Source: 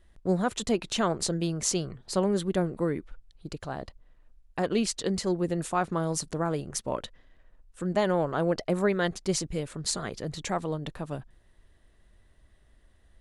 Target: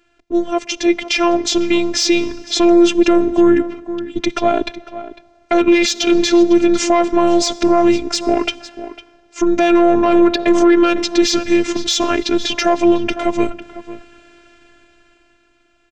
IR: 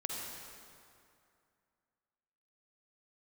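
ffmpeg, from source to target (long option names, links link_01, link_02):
-filter_complex "[0:a]equalizer=frequency=750:width=2.2:gain=-6.5,dynaudnorm=framelen=140:gausssize=17:maxgain=14.5dB,highpass=frequency=100:width=0.5412,highpass=frequency=100:width=1.3066,equalizer=frequency=780:width_type=q:width=4:gain=9,equalizer=frequency=1300:width_type=q:width=4:gain=-5,equalizer=frequency=2800:width_type=q:width=4:gain=6,lowpass=frequency=7900:width=0.5412,lowpass=frequency=7900:width=1.3066,acontrast=61,asetrate=36603,aresample=44100,asplit=2[link_01][link_02];[link_02]adelay=501.5,volume=-15dB,highshelf=frequency=4000:gain=-11.3[link_03];[link_01][link_03]amix=inputs=2:normalize=0,asplit=2[link_04][link_05];[1:a]atrim=start_sample=2205[link_06];[link_05][link_06]afir=irnorm=-1:irlink=0,volume=-23dB[link_07];[link_04][link_07]amix=inputs=2:normalize=0,afftfilt=real='hypot(re,im)*cos(PI*b)':imag='0':win_size=512:overlap=0.75,alimiter=level_in=8dB:limit=-1dB:release=50:level=0:latency=1,volume=-1dB"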